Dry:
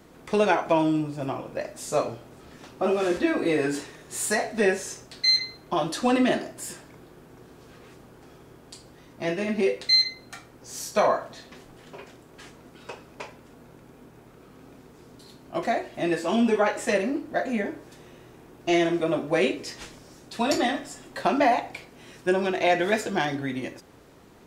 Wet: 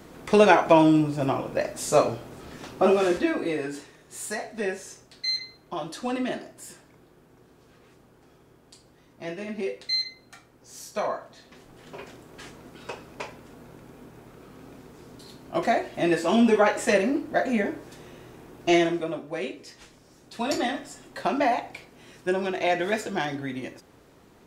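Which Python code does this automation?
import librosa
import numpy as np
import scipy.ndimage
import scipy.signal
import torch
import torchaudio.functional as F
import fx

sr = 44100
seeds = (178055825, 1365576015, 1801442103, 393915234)

y = fx.gain(x, sr, db=fx.line((2.83, 5.0), (3.71, -7.0), (11.34, -7.0), (12.02, 2.5), (18.73, 2.5), (19.24, -9.0), (19.8, -9.0), (20.56, -2.5)))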